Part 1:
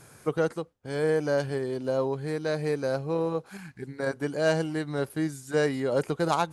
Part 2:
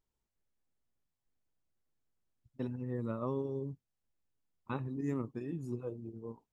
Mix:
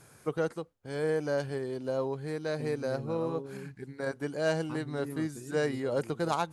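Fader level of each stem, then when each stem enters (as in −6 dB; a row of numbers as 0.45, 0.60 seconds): −4.5, −5.0 decibels; 0.00, 0.00 seconds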